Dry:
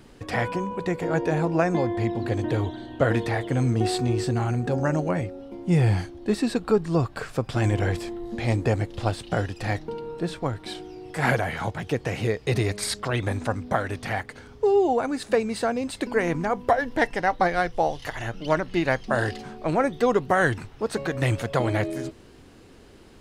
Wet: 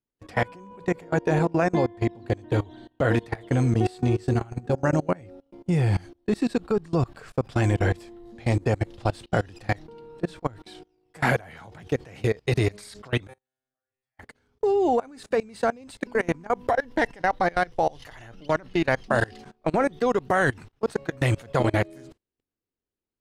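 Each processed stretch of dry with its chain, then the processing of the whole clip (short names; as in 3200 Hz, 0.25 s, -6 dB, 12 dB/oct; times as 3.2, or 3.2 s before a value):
13.27–14.19 bell 230 Hz -8.5 dB 2.1 oct + auto swell 0.62 s + resonator 130 Hz, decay 0.74 s, mix 100%
whole clip: gate -36 dBFS, range -24 dB; level quantiser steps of 24 dB; gain +3.5 dB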